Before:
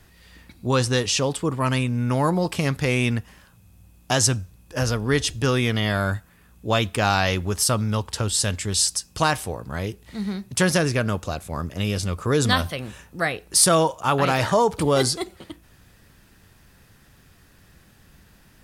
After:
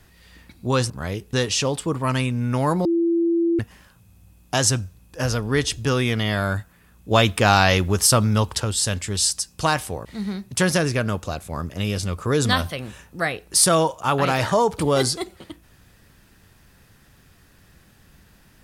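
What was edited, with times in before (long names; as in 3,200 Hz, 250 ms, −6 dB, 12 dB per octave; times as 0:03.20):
0:02.42–0:03.16: beep over 337 Hz −16.5 dBFS
0:06.68–0:08.17: clip gain +4.5 dB
0:09.62–0:10.05: move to 0:00.90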